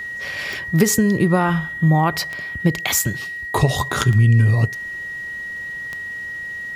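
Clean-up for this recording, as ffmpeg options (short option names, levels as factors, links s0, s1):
-af "adeclick=t=4,bandreject=f=1900:w=30"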